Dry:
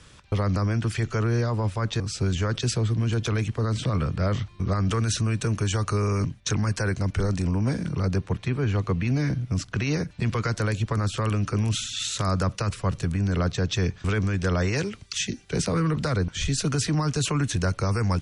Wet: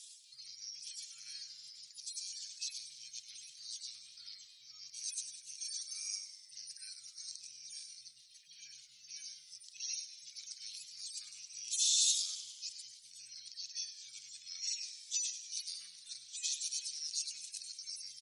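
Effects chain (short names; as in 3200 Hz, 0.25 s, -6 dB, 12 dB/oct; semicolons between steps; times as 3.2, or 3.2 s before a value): median-filter separation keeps harmonic; inverse Chebyshev high-pass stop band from 970 Hz, stop band 70 dB; frequency-shifting echo 99 ms, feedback 63%, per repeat -88 Hz, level -12 dB; frequency shift +28 Hz; gain +9.5 dB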